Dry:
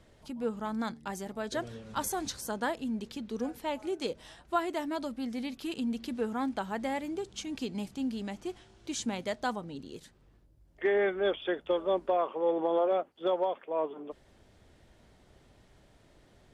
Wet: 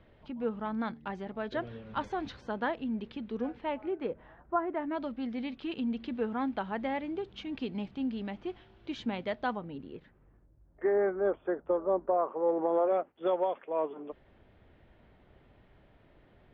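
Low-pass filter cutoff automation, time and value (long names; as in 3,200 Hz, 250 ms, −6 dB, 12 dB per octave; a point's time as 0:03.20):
low-pass filter 24 dB per octave
0:03.51 3,200 Hz
0:04.57 1,400 Hz
0:05.08 3,400 Hz
0:09.41 3,400 Hz
0:10.94 1,400 Hz
0:12.13 1,400 Hz
0:13.37 3,000 Hz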